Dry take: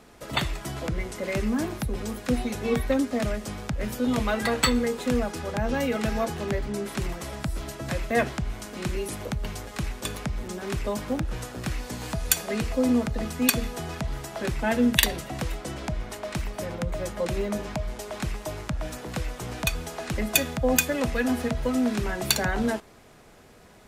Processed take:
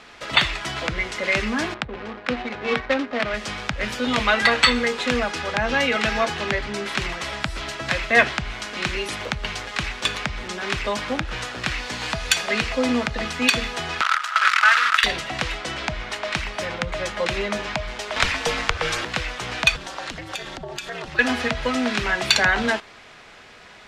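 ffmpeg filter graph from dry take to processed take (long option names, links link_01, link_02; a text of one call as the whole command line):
ffmpeg -i in.wav -filter_complex "[0:a]asettb=1/sr,asplit=3[link_01][link_02][link_03];[link_01]atrim=end=1.744[link_04];[link_02]atrim=start=1.74:end=3.34,asetpts=PTS-STARTPTS,afade=type=in:duration=0.004:curve=qsin,afade=type=out:start_time=1.596:duration=0.004:curve=qsin,lowshelf=frequency=130:gain=-11,adynamicsmooth=sensitivity=4.5:basefreq=680[link_05];[link_03]atrim=start=3.336[link_06];[link_04][link_05]acrossfade=duration=0.004:curve1=hsin:curve2=qsin[link_07];[link_07][link_06]acrossfade=duration=0.004:curve1=qsin:curve2=hsin,asettb=1/sr,asplit=3[link_08][link_09][link_10];[link_08]atrim=end=14.014[link_11];[link_09]atrim=start=14.01:end=15.04,asetpts=PTS-STARTPTS,afade=type=in:duration=0.004:curve=qsin,afade=type=out:start_time=1.026:duration=0.004:curve=qsin,acompressor=threshold=-33dB:ratio=1.5:attack=3.2:release=140:knee=1:detection=peak,acrusher=bits=6:dc=4:mix=0:aa=0.000001,highpass=frequency=1300:width_type=q:width=8.4[link_12];[link_10]atrim=start=15.036[link_13];[link_11][link_12]acrossfade=duration=0.004:curve1=hsin:curve2=qsin[link_14];[link_14][link_13]acrossfade=duration=0.004:curve1=qsin:curve2=hsin,asettb=1/sr,asplit=3[link_15][link_16][link_17];[link_15]atrim=end=18.164[link_18];[link_16]atrim=start=18.16:end=19.05,asetpts=PTS-STARTPTS,afade=type=in:duration=0.004:curve=qsin,afade=type=out:start_time=0.886:duration=0.004:curve=qsin,highpass=frequency=82:width=0.5412,highpass=frequency=82:width=1.3066,afreqshift=-150,acontrast=69[link_19];[link_17]atrim=start=19.046[link_20];[link_18][link_19]acrossfade=duration=0.004:curve1=hsin:curve2=qsin[link_21];[link_21][link_20]acrossfade=duration=0.004:curve1=qsin:curve2=hsin,asettb=1/sr,asplit=3[link_22][link_23][link_24];[link_22]atrim=end=19.764[link_25];[link_23]atrim=start=19.76:end=21.19,asetpts=PTS-STARTPTS,afade=type=in:duration=0.004:curve=qsin,afade=type=out:start_time=1.426:duration=0.004:curve=qsin,equalizer=frequency=2300:width=4:gain=-7.5,acompressor=threshold=-30dB:ratio=8:attack=3.2:release=140:knee=1:detection=peak,aeval=exprs='val(0)*sin(2*PI*110*n/s)':channel_layout=same[link_26];[link_24]atrim=start=21.186[link_27];[link_25][link_26]acrossfade=duration=0.004:curve1=hsin:curve2=qsin[link_28];[link_28][link_27]acrossfade=duration=0.004:curve1=qsin:curve2=hsin,lowpass=3400,tiltshelf=frequency=970:gain=-10,alimiter=level_in=9dB:limit=-1dB:release=50:level=0:latency=1,volume=-1dB" out.wav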